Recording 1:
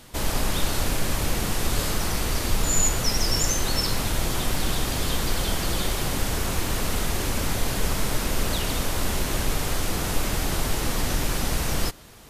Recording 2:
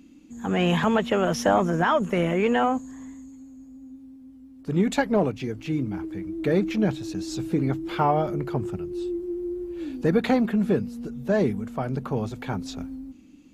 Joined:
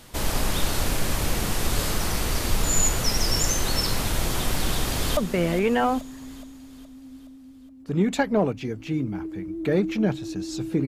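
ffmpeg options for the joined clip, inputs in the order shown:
-filter_complex "[0:a]apad=whole_dur=10.87,atrim=end=10.87,atrim=end=5.172[a];[1:a]atrim=start=1.958:end=7.66[b];[a][b]acrossfade=d=0.004:c1=hsin:c2=hsin,asplit=2[c][d];[d]afade=t=in:st=4.62:d=0.01,afade=t=out:st=5.17:d=0.01,aecho=0:1:420|840|1260|1680|2100|2520:0.266073|0.14634|0.0804869|0.0442678|0.0243473|0.013391[e];[c][e]amix=inputs=2:normalize=0"

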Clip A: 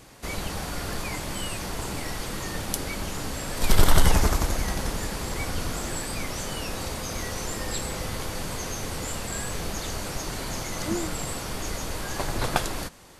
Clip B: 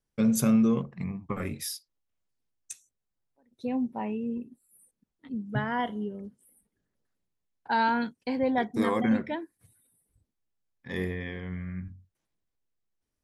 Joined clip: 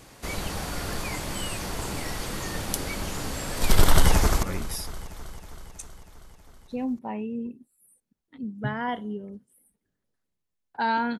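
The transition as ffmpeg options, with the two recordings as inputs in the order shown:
-filter_complex "[0:a]apad=whole_dur=11.19,atrim=end=11.19,atrim=end=4.432[a];[1:a]atrim=start=1.338:end=8.1[b];[a][b]acrossfade=d=0.004:c1=hsin:c2=hsin,asplit=2[c][d];[d]afade=t=in:st=3.83:d=0.01,afade=t=out:st=4.43:d=0.01,aecho=0:1:320|640|960|1280|1600|1920|2240|2560:0.158489|0.110943|0.0776598|0.0543618|0.0380533|0.0266373|0.0186461|0.0130523[e];[c][e]amix=inputs=2:normalize=0"

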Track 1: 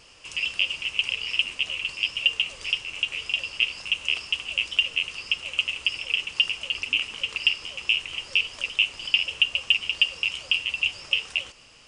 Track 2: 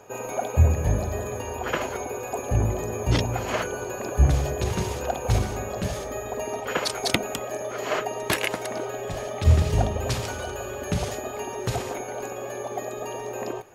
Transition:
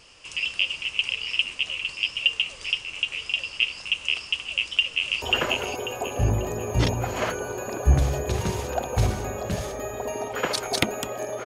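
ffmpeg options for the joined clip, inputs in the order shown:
-filter_complex "[0:a]apad=whole_dur=11.45,atrim=end=11.45,atrim=end=5.222[a];[1:a]atrim=start=1.538:end=7.77[b];[a][b]acrossfade=d=0.004:c1=hsin:c2=hsin,asplit=2[c][d];[d]afade=t=in:st=4.46:d=0.01,afade=t=out:st=5.22:d=0.01,aecho=0:1:540|1080|1620|2160:0.841395|0.210349|0.0525872|0.0131468[e];[c][e]amix=inputs=2:normalize=0"

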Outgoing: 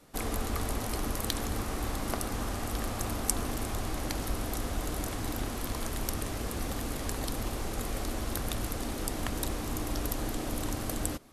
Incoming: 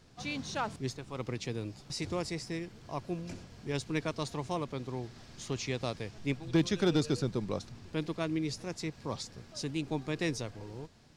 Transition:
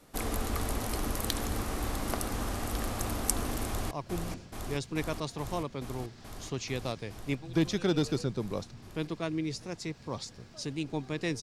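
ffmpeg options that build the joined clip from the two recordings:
-filter_complex "[0:a]apad=whole_dur=11.42,atrim=end=11.42,atrim=end=3.912[a];[1:a]atrim=start=2.888:end=10.4[b];[a][b]acrossfade=d=0.004:c1=hsin:c2=hsin,asplit=2[c][d];[d]afade=t=in:st=3.66:d=0.01,afade=t=out:st=3.91:d=0.01,aecho=0:1:430|860|1290|1720|2150|2580|3010|3440|3870|4300|4730|5160:0.630957|0.536314|0.455867|0.387487|0.329364|0.279959|0.237965|0.20227|0.17193|0.14614|0.124219|0.105586[e];[c][e]amix=inputs=2:normalize=0"

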